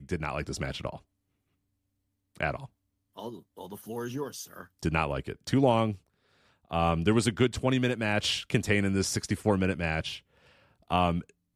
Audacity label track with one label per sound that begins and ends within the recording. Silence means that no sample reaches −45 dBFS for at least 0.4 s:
2.360000	2.660000	sound
3.170000	5.960000	sound
6.710000	10.190000	sound